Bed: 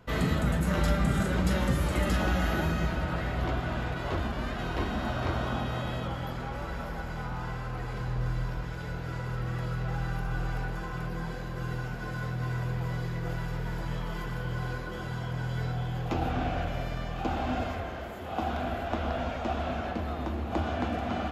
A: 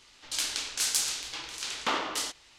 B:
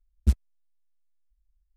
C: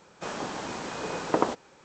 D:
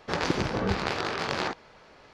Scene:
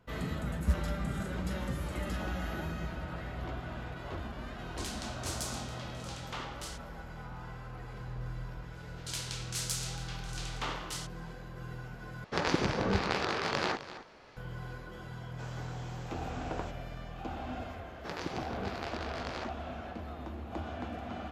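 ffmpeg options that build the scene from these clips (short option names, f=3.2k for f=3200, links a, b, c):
-filter_complex "[1:a]asplit=2[a][b];[4:a]asplit=2[c][d];[0:a]volume=-9dB[e];[2:a]dynaudnorm=f=150:g=3:m=11.5dB[f];[c]aecho=1:1:258:0.2[g];[3:a]aeval=exprs='clip(val(0),-1,0.0708)':c=same[h];[e]asplit=2[i][j];[i]atrim=end=12.244[k];[g]atrim=end=2.13,asetpts=PTS-STARTPTS,volume=-2.5dB[l];[j]atrim=start=14.366[m];[f]atrim=end=1.76,asetpts=PTS-STARTPTS,volume=-14.5dB,afade=t=in:d=0.004:c=hsin,afade=t=out:st=1.756:d=0.004:c=hsin,adelay=410[n];[a]atrim=end=2.58,asetpts=PTS-STARTPTS,volume=-12.5dB,afade=t=in:d=0.004:c=hsin,afade=t=out:st=2.576:d=0.004:c=hsin,adelay=4460[o];[b]atrim=end=2.58,asetpts=PTS-STARTPTS,volume=-8.5dB,afade=t=in:d=0.004:c=hsin,afade=t=out:st=2.576:d=0.004:c=hsin,adelay=8750[p];[h]atrim=end=1.84,asetpts=PTS-STARTPTS,volume=-14dB,afade=t=in:d=0.004:c=hsin,afade=t=out:st=1.836:d=0.004:c=hsin,adelay=15170[q];[d]atrim=end=2.13,asetpts=PTS-STARTPTS,volume=-11.5dB,afade=t=in:d=0.004:c=hsin,afade=t=out:st=2.126:d=0.004:c=hsin,adelay=792036S[r];[k][l]acrossfade=d=0.004:c1=hsin:c2=hsin[s];[s][m]acrossfade=d=0.004:c1=hsin:c2=hsin[t];[t][n][o][p][q][r]amix=inputs=6:normalize=0"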